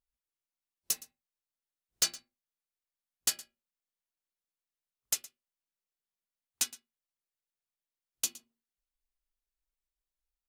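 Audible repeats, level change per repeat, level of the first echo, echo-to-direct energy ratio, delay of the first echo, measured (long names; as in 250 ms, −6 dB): 1, repeats not evenly spaced, −19.5 dB, −19.5 dB, 116 ms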